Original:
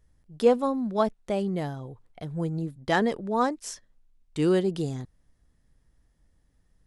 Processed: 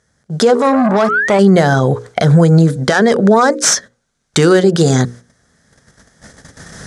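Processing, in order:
stylus tracing distortion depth 0.11 ms
camcorder AGC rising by 7 dB per second
noise gate −50 dBFS, range −14 dB
bass and treble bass −3 dB, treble +1 dB
mains-hum notches 60/120/180/240/300/360/420/480/540 Hz
downward compressor 6 to 1, threshold −29 dBFS, peak gain reduction 12 dB
0:00.52–0:01.39: sound drawn into the spectrogram rise 370–2,400 Hz −47 dBFS
loudspeaker in its box 140–9,300 Hz, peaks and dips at 310 Hz −9 dB, 950 Hz −5 dB, 1,500 Hz +7 dB, 2,700 Hz −8 dB, 6,200 Hz +5 dB
boost into a limiter +29.5 dB
0:00.55–0:01.39: saturating transformer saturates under 600 Hz
level −1 dB

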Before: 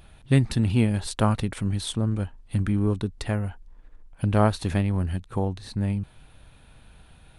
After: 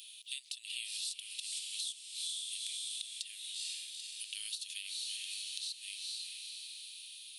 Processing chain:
Butterworth high-pass 2,900 Hz 48 dB per octave
feedback delay with all-pass diffusion 452 ms, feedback 51%, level −7.5 dB
downward compressor 10 to 1, threshold −49 dBFS, peak gain reduction 20.5 dB
harmonic and percussive parts rebalanced percussive −6 dB
level +15 dB

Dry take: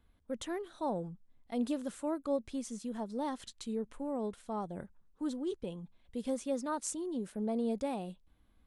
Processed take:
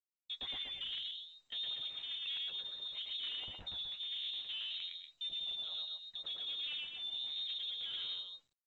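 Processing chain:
noise gate −56 dBFS, range −42 dB
high-pass filter 52 Hz 24 dB per octave
parametric band 1,000 Hz +5 dB 0.81 octaves
in parallel at −2 dB: brickwall limiter −28 dBFS, peak gain reduction 6 dB
on the sum: downward compressor 5 to 1, threshold −33 dBFS, peak gain reduction 9 dB
flanger 0.96 Hz, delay 9.2 ms, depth 3.2 ms, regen +33%
on a send: loudspeakers that aren't time-aligned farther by 38 metres −1 dB, 82 metres −7 dB
on the sum: harmonic generator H 3 −23 dB, 5 −13 dB, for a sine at −23.5 dBFS
voice inversion scrambler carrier 3,900 Hz
level −8 dB
mu-law 128 kbit/s 16,000 Hz

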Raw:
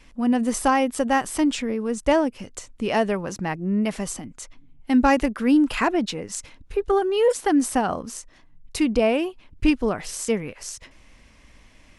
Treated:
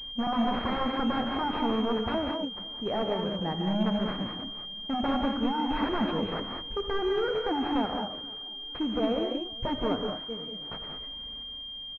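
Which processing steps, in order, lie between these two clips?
sample-and-hold tremolo 1.4 Hz, depth 85%
wave folding −23.5 dBFS
repeating echo 485 ms, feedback 51%, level −23 dB
reverb whose tail is shaped and stops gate 230 ms rising, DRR 2.5 dB
switching amplifier with a slow clock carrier 3,200 Hz

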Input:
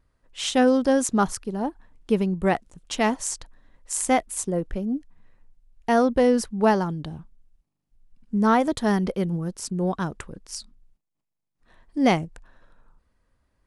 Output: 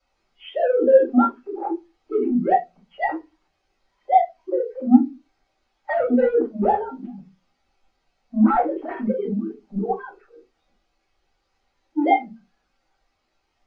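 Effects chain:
three sine waves on the formant tracks
dynamic equaliser 1,900 Hz, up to +4 dB, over −41 dBFS, Q 1.7
soft clipping −18 dBFS, distortion −11 dB
in parallel at −8.5 dB: bit-depth reduction 6 bits, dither triangular
on the sum: high-frequency loss of the air 110 metres
convolution reverb, pre-delay 4 ms, DRR −7.5 dB
every bin expanded away from the loudest bin 1.5 to 1
level −7 dB

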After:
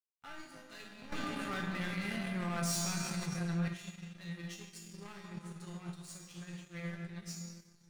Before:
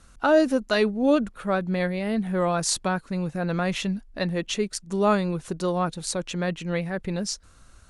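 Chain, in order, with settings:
high-shelf EQ 4,000 Hz +9.5 dB
mains-hum notches 60/120/180/240/300 Hz
convolution reverb RT60 2.9 s, pre-delay 3 ms, DRR 1.5 dB
hard clipping −17.5 dBFS, distortion −12 dB
tuned comb filter 170 Hz, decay 0.56 s, harmonics all, mix 90%
dead-zone distortion −51.5 dBFS
octave-band graphic EQ 125/500/2,000 Hz +12/−9/+5 dB
power curve on the samples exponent 1.4
tuned comb filter 400 Hz, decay 0.43 s, mix 80%
0:01.12–0:03.68: envelope flattener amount 70%
level +6.5 dB

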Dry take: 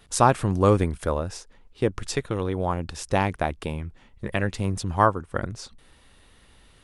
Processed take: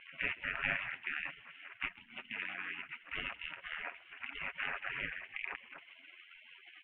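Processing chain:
compressor on every frequency bin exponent 0.4
0:01.88–0:02.90: elliptic high-pass filter 310 Hz, stop band 50 dB
gate on every frequency bin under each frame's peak −25 dB weak
Butterworth low-pass 2,800 Hz 72 dB per octave
comb filter 7.3 ms, depth 42%
amplitude modulation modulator 86 Hz, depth 30%
on a send: echo with shifted repeats 131 ms, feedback 57%, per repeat +43 Hz, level −21.5 dB
on the sum: one half of a high-frequency compander encoder only
level +3 dB

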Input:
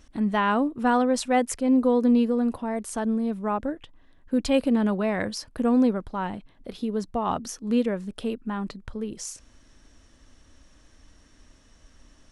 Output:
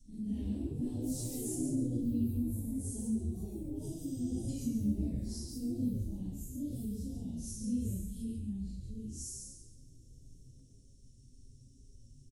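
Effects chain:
random phases in long frames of 200 ms
Chebyshev band-stop filter 160–8,200 Hz, order 2
on a send: echo with shifted repeats 139 ms, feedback 34%, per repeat −140 Hz, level −5 dB
on the sum: delay with pitch and tempo change per echo 127 ms, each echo +3 semitones, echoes 3, each echo −6 dB
in parallel at −1 dB: downward compressor, threshold −38 dBFS, peak gain reduction 16.5 dB
on the sum: healed spectral selection 0:03.90–0:04.46, 1,000–8,300 Hz before
level −8 dB

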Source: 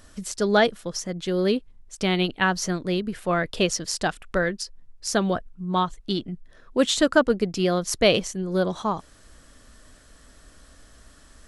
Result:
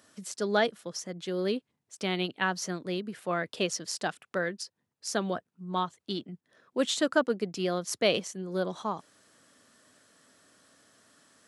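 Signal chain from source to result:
Bessel high-pass filter 180 Hz, order 8
level −6.5 dB

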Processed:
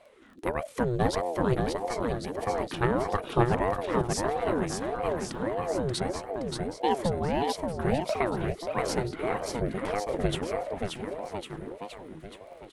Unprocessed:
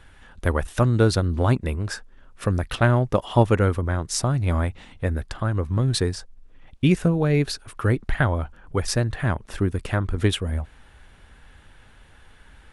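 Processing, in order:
surface crackle 20 per second −41 dBFS
bouncing-ball delay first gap 580 ms, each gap 0.9×, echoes 5
ring modulator whose carrier an LFO sweeps 430 Hz, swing 45%, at 1.6 Hz
level −5.5 dB

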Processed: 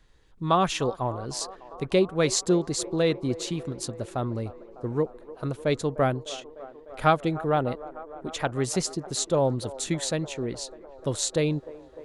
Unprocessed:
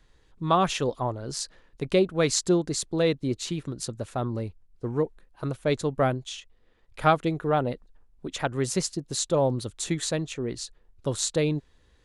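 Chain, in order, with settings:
delay with a band-pass on its return 301 ms, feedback 78%, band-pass 680 Hz, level −16 dB

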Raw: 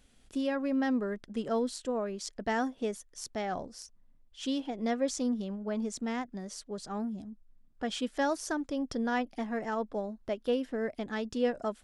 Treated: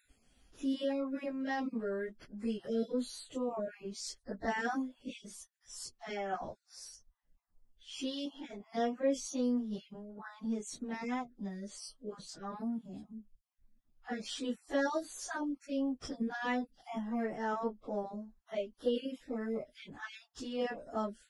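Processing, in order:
time-frequency cells dropped at random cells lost 26%
time stretch by phase vocoder 1.8×

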